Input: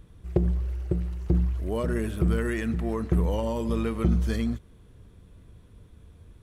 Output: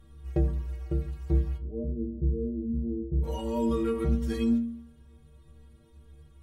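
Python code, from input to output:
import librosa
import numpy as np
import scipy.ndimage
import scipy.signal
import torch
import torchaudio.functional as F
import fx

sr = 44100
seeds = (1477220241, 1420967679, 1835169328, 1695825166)

p1 = fx.rider(x, sr, range_db=10, speed_s=2.0)
p2 = fx.gaussian_blur(p1, sr, sigma=21.0, at=(1.56, 3.22), fade=0.02)
p3 = fx.stiff_resonator(p2, sr, f0_hz=69.0, decay_s=0.83, stiffness=0.03)
p4 = p3 + fx.echo_feedback(p3, sr, ms=73, feedback_pct=52, wet_db=-23, dry=0)
y = F.gain(torch.from_numpy(p4), 9.0).numpy()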